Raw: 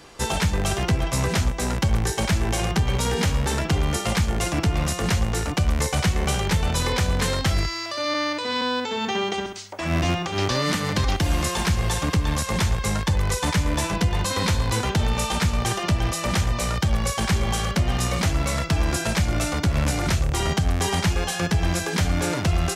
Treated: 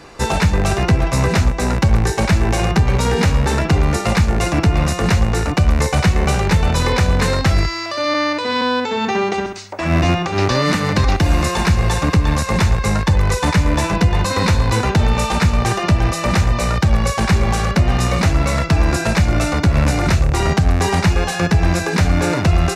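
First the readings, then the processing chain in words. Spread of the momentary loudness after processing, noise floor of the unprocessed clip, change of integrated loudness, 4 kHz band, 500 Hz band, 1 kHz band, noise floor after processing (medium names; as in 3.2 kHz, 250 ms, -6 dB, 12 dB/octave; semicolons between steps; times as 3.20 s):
2 LU, -30 dBFS, +7.0 dB, +3.0 dB, +7.5 dB, +7.0 dB, -24 dBFS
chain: treble shelf 5.8 kHz -10 dB; band-stop 3.2 kHz, Q 7.8; trim +7.5 dB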